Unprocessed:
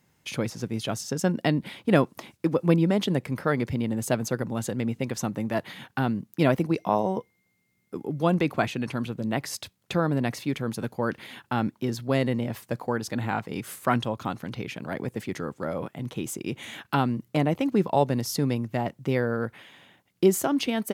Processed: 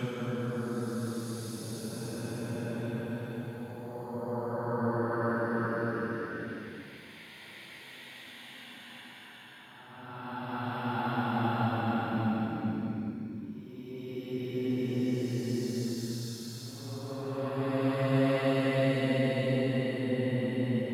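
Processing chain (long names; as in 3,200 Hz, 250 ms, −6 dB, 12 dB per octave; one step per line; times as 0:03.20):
extreme stretch with random phases 12×, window 0.25 s, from 0:10.61
level −5 dB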